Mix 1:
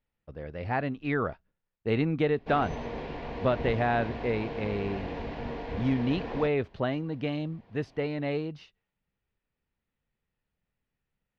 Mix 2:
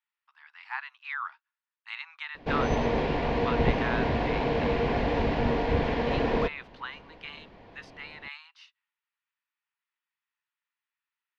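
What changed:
speech: add steep high-pass 910 Hz 72 dB/octave; background +10.0 dB

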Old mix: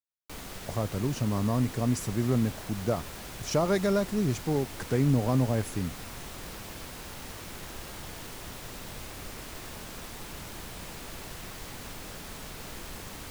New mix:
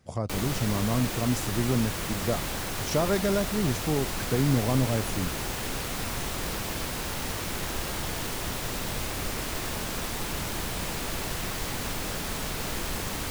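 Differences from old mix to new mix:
speech: entry -0.60 s; background +9.5 dB

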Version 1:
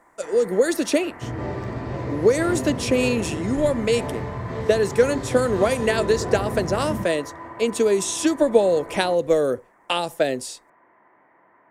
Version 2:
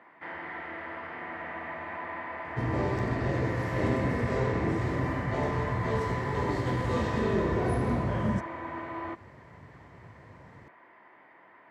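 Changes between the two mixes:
speech: muted; first sound: remove low-pass 1.6 kHz 12 dB/octave; second sound: entry +1.35 s

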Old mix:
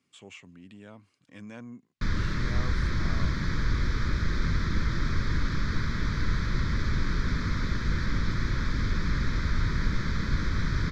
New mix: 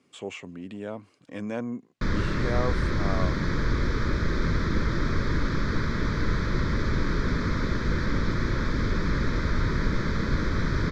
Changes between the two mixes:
speech +5.5 dB; master: add peaking EQ 500 Hz +10.5 dB 2.1 oct

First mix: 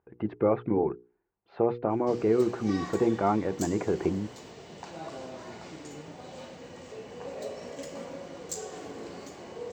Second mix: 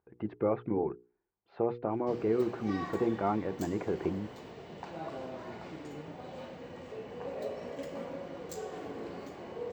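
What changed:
speech -5.0 dB; background: add peaking EQ 6.9 kHz -13 dB 1.4 oct

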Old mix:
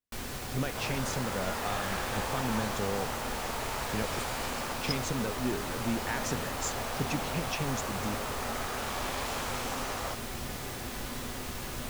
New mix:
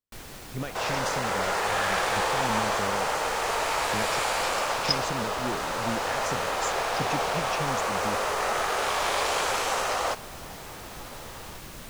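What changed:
second sound +10.0 dB; reverb: off

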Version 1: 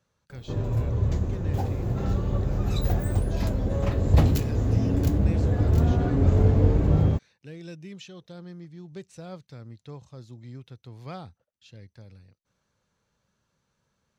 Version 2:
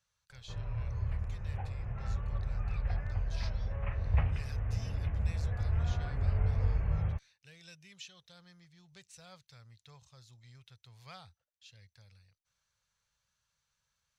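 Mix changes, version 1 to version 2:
background: add steep low-pass 2.6 kHz 48 dB/octave; master: add amplifier tone stack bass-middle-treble 10-0-10

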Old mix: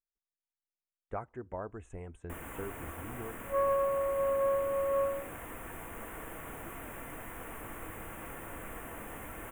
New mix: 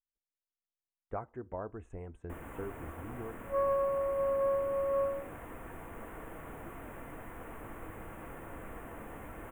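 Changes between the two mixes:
speech: send +6.5 dB; master: add treble shelf 2.2 kHz -11 dB

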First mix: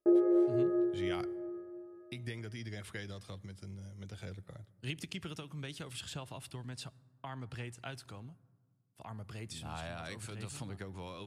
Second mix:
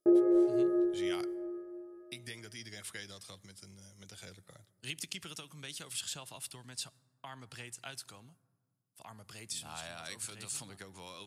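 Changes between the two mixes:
speech: add high-pass 790 Hz 6 dB/octave; master: add tone controls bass +7 dB, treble +10 dB

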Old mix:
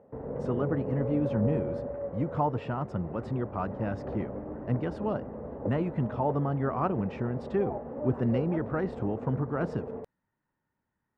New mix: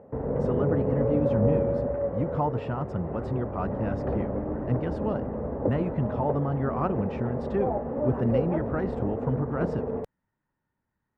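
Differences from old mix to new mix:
background +7.0 dB; master: add bass shelf 100 Hz +5.5 dB

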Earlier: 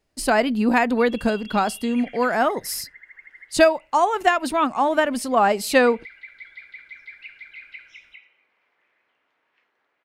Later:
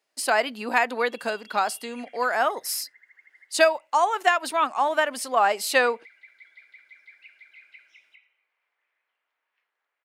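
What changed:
background -9.0 dB; master: add Bessel high-pass 720 Hz, order 2

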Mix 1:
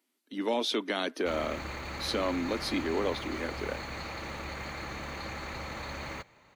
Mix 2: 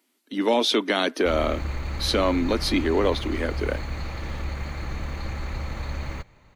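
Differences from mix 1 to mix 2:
speech +8.5 dB; background: remove high-pass 350 Hz 6 dB/octave

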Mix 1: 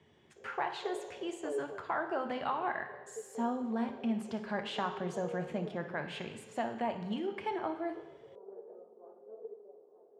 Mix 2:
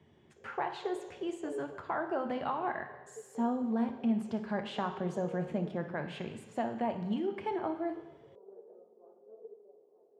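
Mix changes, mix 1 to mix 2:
background -6.0 dB; master: add tilt shelf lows +4 dB, about 840 Hz

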